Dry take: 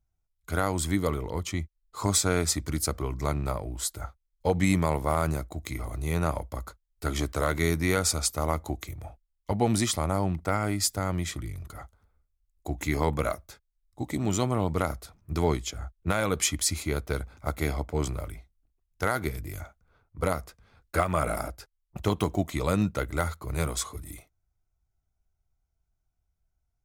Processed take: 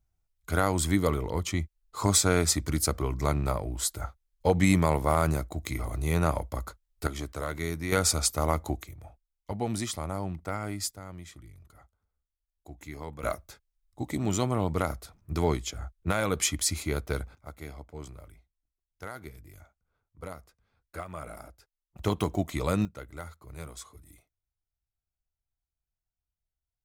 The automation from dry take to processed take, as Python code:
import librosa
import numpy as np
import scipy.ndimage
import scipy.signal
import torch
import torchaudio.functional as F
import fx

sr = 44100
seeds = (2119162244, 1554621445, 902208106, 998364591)

y = fx.gain(x, sr, db=fx.steps((0.0, 1.5), (7.07, -7.0), (7.92, 1.0), (8.83, -6.5), (10.91, -14.0), (13.23, -1.0), (17.35, -13.5), (21.99, -1.5), (22.85, -13.0)))